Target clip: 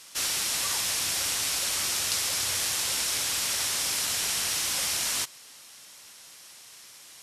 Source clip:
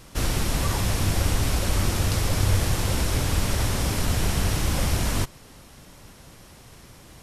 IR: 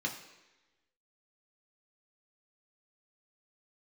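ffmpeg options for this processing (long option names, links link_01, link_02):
-af "bandpass=frequency=7000:width_type=q:width=0.53:csg=0,acontrast=51"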